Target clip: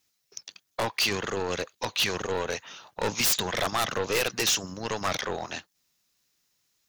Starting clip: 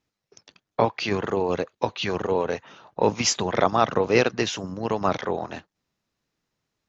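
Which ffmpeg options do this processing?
-af "aeval=exprs='(tanh(7.94*val(0)+0.35)-tanh(0.35))/7.94':c=same,crystalizer=i=9:c=0,aeval=exprs='0.237*(abs(mod(val(0)/0.237+3,4)-2)-1)':c=same,volume=-5dB"

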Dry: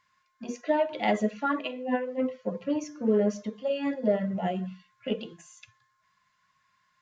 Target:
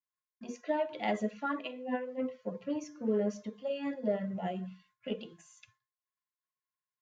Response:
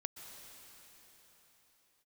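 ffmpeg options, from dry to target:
-af "agate=range=-33dB:threshold=-55dB:ratio=3:detection=peak,volume=-6.5dB"

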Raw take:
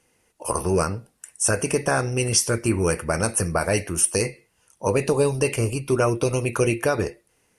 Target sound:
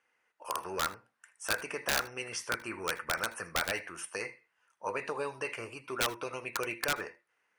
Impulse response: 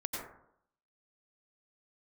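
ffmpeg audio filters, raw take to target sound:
-filter_complex "[0:a]bandpass=f=1.5k:t=q:w=1.7:csg=0,aeval=exprs='(mod(9.44*val(0)+1,2)-1)/9.44':c=same,asplit=2[a][b];[1:a]atrim=start_sample=2205,atrim=end_sample=3969,asetrate=48510,aresample=44100[c];[b][c]afir=irnorm=-1:irlink=0,volume=-6.5dB[d];[a][d]amix=inputs=2:normalize=0,volume=-4.5dB"

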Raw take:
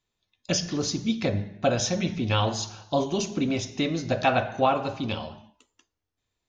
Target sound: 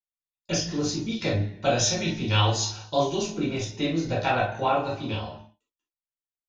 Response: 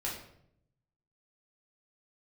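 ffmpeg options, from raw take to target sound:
-filter_complex "[0:a]agate=range=-33dB:threshold=-45dB:ratio=3:detection=peak,asettb=1/sr,asplit=3[a][b][c];[a]atrim=end=1.124[d];[b]atrim=start=1.12:end=3.15,asetpts=PTS-STARTPTS,afade=t=in:d=0.004:c=qsin,afade=t=out:st=2.026:d=0.004:c=qsin,equalizer=f=5.5k:t=o:w=2.6:g=6.5[e];[c]atrim=start=3.146[f];[d][e]acrossfade=d=0.004:c1=hsin:c2=qsin[g];[g][f]acrossfade=d=0.004:c1=qsin:c2=hsin[h];[1:a]atrim=start_sample=2205,atrim=end_sample=3528[i];[h][i]afir=irnorm=-1:irlink=0,volume=-2.5dB"

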